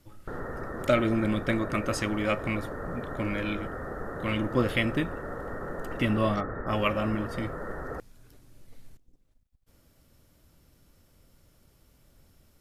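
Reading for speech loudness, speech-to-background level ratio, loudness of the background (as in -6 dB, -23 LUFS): -29.5 LUFS, 8.0 dB, -37.5 LUFS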